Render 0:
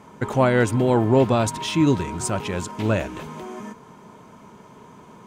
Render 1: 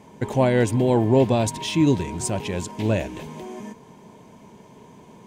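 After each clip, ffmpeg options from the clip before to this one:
-af "equalizer=f=1300:t=o:w=0.42:g=-15"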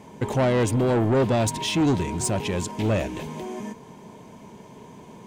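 -af "asoftclip=type=tanh:threshold=0.112,volume=1.33"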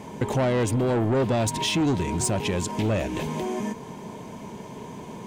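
-af "acompressor=threshold=0.0282:ratio=2.5,volume=2"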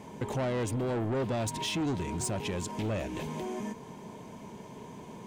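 -af "asoftclip=type=tanh:threshold=0.15,volume=0.447"

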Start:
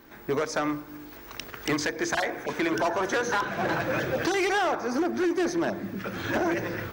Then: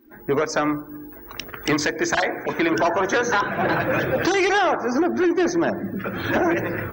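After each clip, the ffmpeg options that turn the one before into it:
-af "afftdn=nr=21:nf=-44,volume=2"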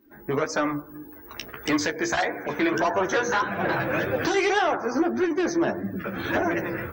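-af "flanger=delay=9.9:depth=5.4:regen=19:speed=1.7:shape=sinusoidal"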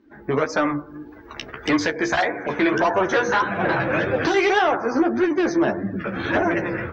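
-af "lowpass=4600,volume=1.58"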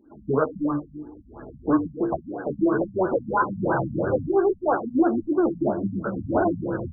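-af "afftfilt=real='re*lt(b*sr/1024,240*pow(1700/240,0.5+0.5*sin(2*PI*3*pts/sr)))':imag='im*lt(b*sr/1024,240*pow(1700/240,0.5+0.5*sin(2*PI*3*pts/sr)))':win_size=1024:overlap=0.75"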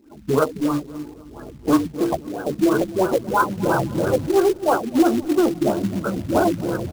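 -filter_complex "[0:a]asplit=2[s0][s1];[s1]adelay=260,lowpass=f=1500:p=1,volume=0.119,asplit=2[s2][s3];[s3]adelay=260,lowpass=f=1500:p=1,volume=0.51,asplit=2[s4][s5];[s5]adelay=260,lowpass=f=1500:p=1,volume=0.51,asplit=2[s6][s7];[s7]adelay=260,lowpass=f=1500:p=1,volume=0.51[s8];[s0][s2][s4][s6][s8]amix=inputs=5:normalize=0,acrusher=bits=4:mode=log:mix=0:aa=0.000001,volume=1.5"

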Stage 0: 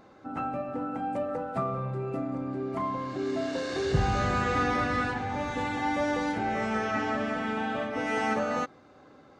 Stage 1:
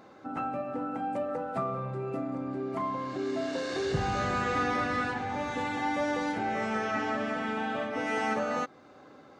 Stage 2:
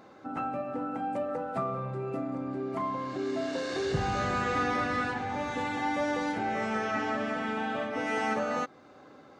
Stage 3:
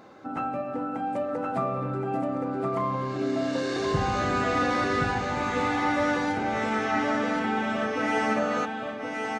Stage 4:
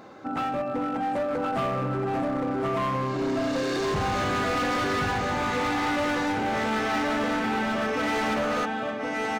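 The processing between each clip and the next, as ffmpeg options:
-filter_complex "[0:a]asplit=2[s0][s1];[s1]acompressor=threshold=0.0141:ratio=6,volume=0.794[s2];[s0][s2]amix=inputs=2:normalize=0,highpass=f=140:p=1,volume=0.708"
-af anull
-af "aecho=1:1:1072:0.631,volume=1.41"
-af "asoftclip=type=hard:threshold=0.0447,volume=1.5"

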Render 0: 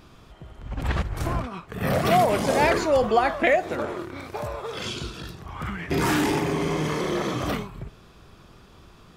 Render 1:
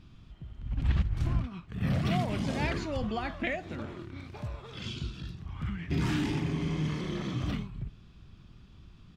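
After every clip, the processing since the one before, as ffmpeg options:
-af "firequalizer=gain_entry='entry(110,0);entry(260,-5);entry(450,-17);entry(2900,-7);entry(12000,-23)':delay=0.05:min_phase=1"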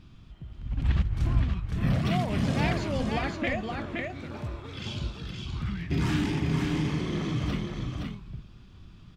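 -af "aecho=1:1:519:0.631,volume=1.26"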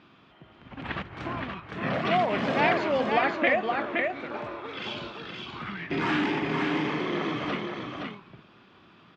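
-af "highpass=420,lowpass=2500,volume=2.82"

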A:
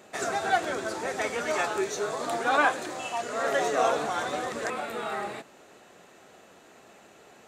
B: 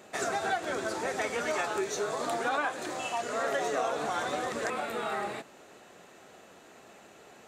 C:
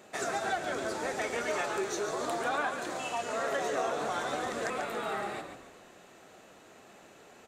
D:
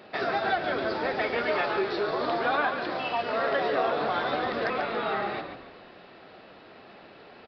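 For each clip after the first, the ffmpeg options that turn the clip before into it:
-af "acompressor=threshold=0.0447:ratio=5"
-filter_complex "[0:a]asplit=6[s0][s1][s2][s3][s4][s5];[s1]adelay=141,afreqshift=-41,volume=0.398[s6];[s2]adelay=282,afreqshift=-82,volume=0.172[s7];[s3]adelay=423,afreqshift=-123,volume=0.0733[s8];[s4]adelay=564,afreqshift=-164,volume=0.0316[s9];[s5]adelay=705,afreqshift=-205,volume=0.0136[s10];[s0][s6][s7][s8][s9][s10]amix=inputs=6:normalize=0,volume=0.794"
-af "aresample=11025,aresample=44100,volume=1.88"

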